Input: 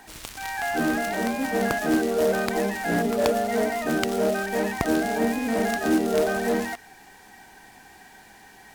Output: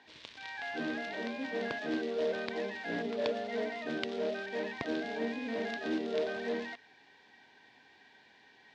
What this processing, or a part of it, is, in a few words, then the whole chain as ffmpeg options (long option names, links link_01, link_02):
kitchen radio: -af "highpass=170,equalizer=frequency=190:width_type=q:width=4:gain=-9,equalizer=frequency=340:width_type=q:width=4:gain=-5,equalizer=frequency=760:width_type=q:width=4:gain=-9,equalizer=frequency=1300:width_type=q:width=4:gain=-9,equalizer=frequency=3600:width_type=q:width=4:gain=4,lowpass=frequency=4500:width=0.5412,lowpass=frequency=4500:width=1.3066,volume=-8dB"